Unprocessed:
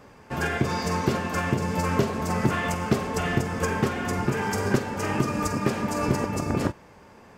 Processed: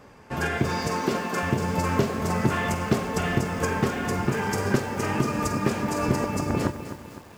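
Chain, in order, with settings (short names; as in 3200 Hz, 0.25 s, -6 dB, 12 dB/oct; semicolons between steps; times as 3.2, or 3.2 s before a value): 0.87–1.43 HPF 180 Hz 24 dB/oct; lo-fi delay 0.255 s, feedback 55%, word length 7-bit, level -11 dB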